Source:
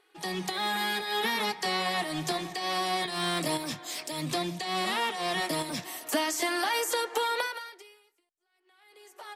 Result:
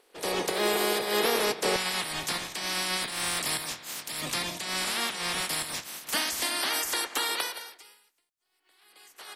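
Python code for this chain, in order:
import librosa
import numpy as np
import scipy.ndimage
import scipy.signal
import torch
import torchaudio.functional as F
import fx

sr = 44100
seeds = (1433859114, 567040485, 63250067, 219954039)

y = fx.spec_clip(x, sr, under_db=22)
y = fx.peak_eq(y, sr, hz=460.0, db=fx.steps((0.0, 14.5), (1.76, -3.0)), octaves=1.2)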